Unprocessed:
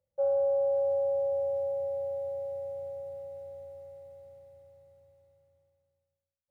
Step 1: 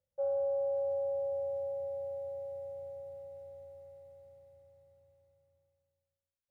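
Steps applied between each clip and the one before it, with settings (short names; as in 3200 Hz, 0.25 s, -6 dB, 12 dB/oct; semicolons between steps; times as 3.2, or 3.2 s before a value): low shelf 62 Hz +5.5 dB; gain -5.5 dB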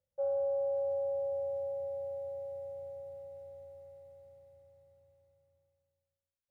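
nothing audible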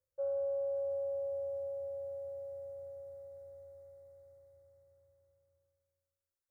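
fixed phaser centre 730 Hz, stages 6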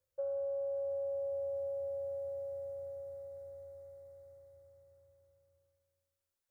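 compressor, threshold -38 dBFS, peak gain reduction 5 dB; gain +3 dB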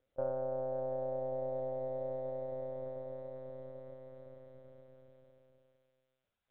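monotone LPC vocoder at 8 kHz 130 Hz; gain +6.5 dB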